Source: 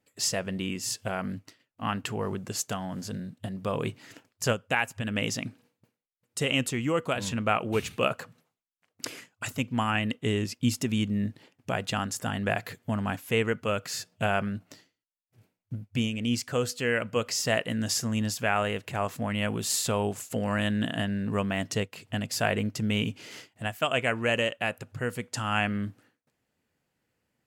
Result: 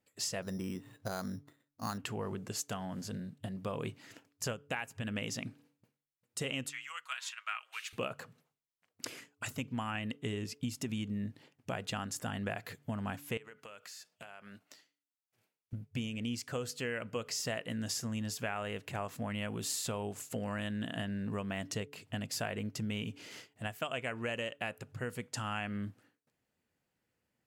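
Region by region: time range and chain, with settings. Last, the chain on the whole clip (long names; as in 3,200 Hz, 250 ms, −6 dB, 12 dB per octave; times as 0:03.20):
0:00.42–0:01.98: low-pass filter 1,900 Hz 24 dB per octave + bad sample-rate conversion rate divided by 8×, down none, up hold
0:06.69–0:07.93: inverse Chebyshev high-pass filter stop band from 290 Hz, stop band 70 dB + high-shelf EQ 8,100 Hz −7 dB + comb filter 6.3 ms, depth 34%
0:13.37–0:15.73: high-pass filter 940 Hz 6 dB per octave + downward compressor 16 to 1, threshold −40 dBFS
whole clip: hum removal 143.9 Hz, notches 3; downward compressor, threshold −28 dBFS; level −5 dB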